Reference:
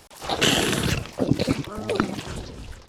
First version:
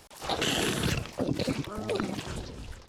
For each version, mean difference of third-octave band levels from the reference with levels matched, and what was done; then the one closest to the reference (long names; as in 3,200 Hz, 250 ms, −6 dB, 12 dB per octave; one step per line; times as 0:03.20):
2.5 dB: brickwall limiter −14 dBFS, peak gain reduction 8.5 dB
level −3.5 dB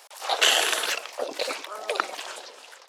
10.5 dB: high-pass filter 550 Hz 24 dB per octave
level +1.5 dB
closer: first